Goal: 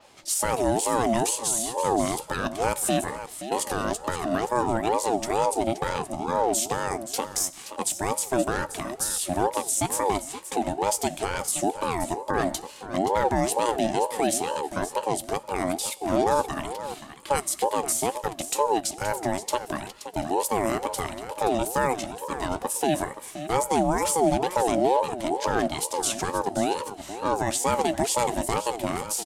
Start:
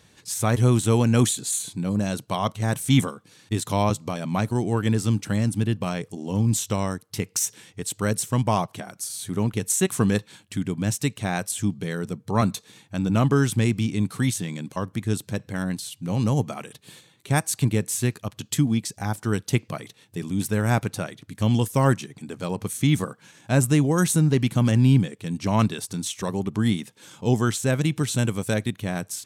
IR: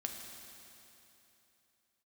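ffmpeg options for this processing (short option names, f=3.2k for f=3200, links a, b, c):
-filter_complex "[0:a]adynamicequalizer=threshold=0.00631:dfrequency=9400:dqfactor=0.74:tfrequency=9400:tqfactor=0.74:attack=5:release=100:ratio=0.375:range=2.5:mode=boostabove:tftype=bell,alimiter=limit=-17.5dB:level=0:latency=1:release=166,aecho=1:1:525:0.251,asplit=2[a][b];[1:a]atrim=start_sample=2205,afade=t=out:st=0.27:d=0.01,atrim=end_sample=12348,adelay=14[c];[b][c]afir=irnorm=-1:irlink=0,volume=-12dB[d];[a][d]amix=inputs=2:normalize=0,aeval=exprs='val(0)*sin(2*PI*590*n/s+590*0.25/2.2*sin(2*PI*2.2*n/s))':c=same,volume=5dB"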